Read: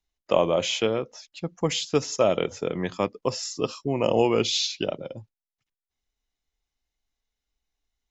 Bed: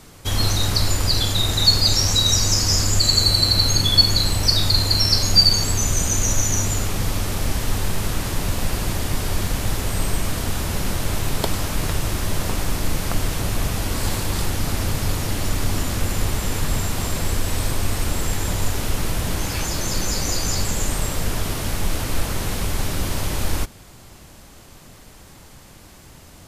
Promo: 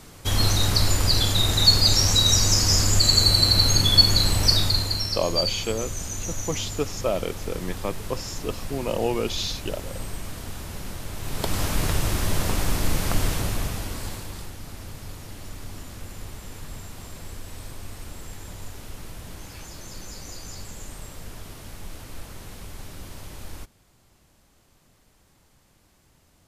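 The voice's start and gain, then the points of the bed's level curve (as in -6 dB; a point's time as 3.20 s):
4.85 s, -4.0 dB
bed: 4.52 s -1 dB
5.18 s -11.5 dB
11.15 s -11.5 dB
11.61 s -1 dB
13.29 s -1 dB
14.56 s -16 dB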